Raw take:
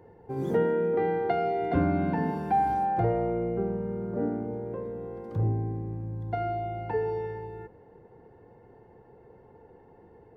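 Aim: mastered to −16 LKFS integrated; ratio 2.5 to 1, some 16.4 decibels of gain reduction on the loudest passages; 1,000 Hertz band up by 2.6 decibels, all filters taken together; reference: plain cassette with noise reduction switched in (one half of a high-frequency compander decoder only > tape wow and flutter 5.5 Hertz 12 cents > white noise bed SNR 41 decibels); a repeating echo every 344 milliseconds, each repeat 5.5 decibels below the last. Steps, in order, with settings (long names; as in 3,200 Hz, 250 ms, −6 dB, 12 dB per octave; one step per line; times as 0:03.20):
parametric band 1,000 Hz +4 dB
downward compressor 2.5 to 1, threshold −45 dBFS
repeating echo 344 ms, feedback 53%, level −5.5 dB
one half of a high-frequency compander decoder only
tape wow and flutter 5.5 Hz 12 cents
white noise bed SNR 41 dB
level +25 dB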